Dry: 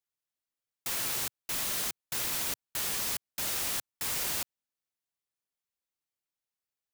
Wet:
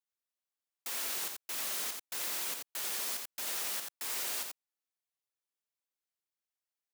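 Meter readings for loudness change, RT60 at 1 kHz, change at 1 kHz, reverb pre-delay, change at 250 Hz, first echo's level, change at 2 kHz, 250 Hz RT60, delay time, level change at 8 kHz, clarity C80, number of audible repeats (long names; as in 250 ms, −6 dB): −3.5 dB, no reverb audible, −4.0 dB, no reverb audible, −8.5 dB, −4.5 dB, −3.5 dB, no reverb audible, 86 ms, −3.5 dB, no reverb audible, 1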